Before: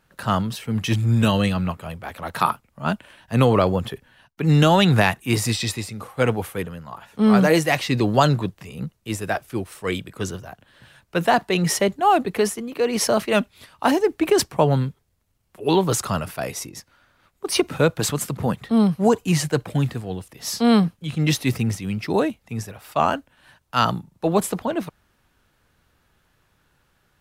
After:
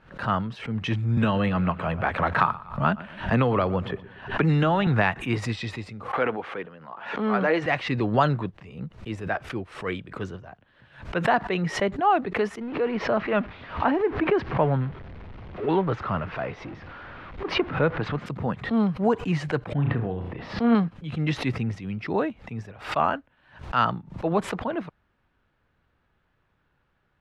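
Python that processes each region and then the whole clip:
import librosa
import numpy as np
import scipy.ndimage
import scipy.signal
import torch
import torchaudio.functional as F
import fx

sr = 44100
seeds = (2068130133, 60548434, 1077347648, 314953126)

y = fx.chain(x, sr, fx.echo_feedback(ms=118, feedback_pct=33, wet_db=-20),
    fx.band_squash(depth_pct=100), at=(1.17, 4.87))
y = fx.chain(y, sr, fx.bandpass_edges(low_hz=280.0, high_hz=4700.0),
    fx.pre_swell(db_per_s=70.0), at=(6.13, 7.66))
y = fx.chain(y, sr, fx.zero_step(step_db=-27.5),
    fx.air_absorb(metres=260.0), at=(12.61, 18.26))
y = fx.chain(y, sr, fx.air_absorb(metres=390.0),
    fx.room_flutter(wall_m=5.9, rt60_s=0.29),
    fx.sustainer(db_per_s=26.0), at=(19.73, 20.75))
y = scipy.signal.sosfilt(scipy.signal.butter(2, 2600.0, 'lowpass', fs=sr, output='sos'), y)
y = fx.dynamic_eq(y, sr, hz=1500.0, q=0.9, threshold_db=-34.0, ratio=4.0, max_db=4)
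y = fx.pre_swell(y, sr, db_per_s=130.0)
y = y * librosa.db_to_amplitude(-5.5)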